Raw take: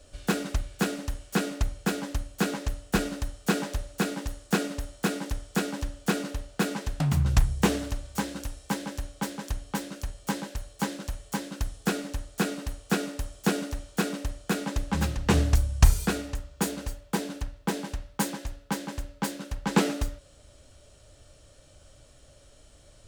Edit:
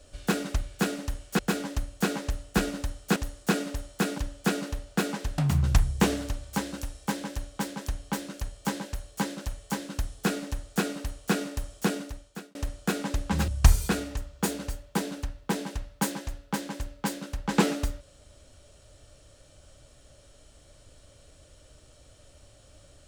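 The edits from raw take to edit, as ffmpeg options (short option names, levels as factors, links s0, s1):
-filter_complex "[0:a]asplit=6[s0][s1][s2][s3][s4][s5];[s0]atrim=end=1.392[s6];[s1]atrim=start=1.768:end=3.542[s7];[s2]atrim=start=4.198:end=5.222[s8];[s3]atrim=start=5.798:end=14.17,asetpts=PTS-STARTPTS,afade=t=out:st=7.562:d=0.81[s9];[s4]atrim=start=14.17:end=15.102,asetpts=PTS-STARTPTS,afade=t=in:d=0.004:c=hsin[s10];[s5]atrim=start=15.658[s11];[s6][s7]acrossfade=d=0.004:c1=hsin:c2=hsin[s12];[s12][s8]acrossfade=d=0.004:c1=hsin:c2=hsin[s13];[s9][s10]concat=n=2:v=0:a=1[s14];[s13][s14]acrossfade=d=0.004:c1=hsin:c2=hsin[s15];[s15][s11]acrossfade=d=0.004:c1=hsin:c2=hsin"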